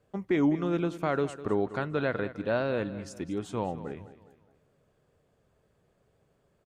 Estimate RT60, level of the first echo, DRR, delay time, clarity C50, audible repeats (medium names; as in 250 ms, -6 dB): no reverb, -15.0 dB, no reverb, 204 ms, no reverb, 3